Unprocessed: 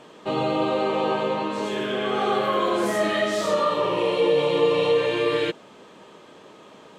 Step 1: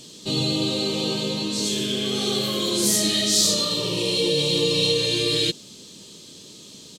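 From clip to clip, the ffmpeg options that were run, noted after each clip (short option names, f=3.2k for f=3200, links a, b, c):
-af "firequalizer=gain_entry='entry(100,0);entry(710,-22);entry(1400,-21);entry(4200,10)':delay=0.05:min_phase=1,volume=8.5dB"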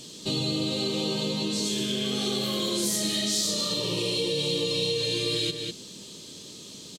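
-filter_complex "[0:a]asplit=2[a][b];[b]adelay=198.3,volume=-9dB,highshelf=f=4k:g=-4.46[c];[a][c]amix=inputs=2:normalize=0,acompressor=threshold=-26dB:ratio=3"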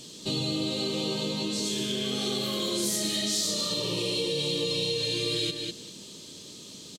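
-af "aecho=1:1:195:0.188,volume=-1.5dB"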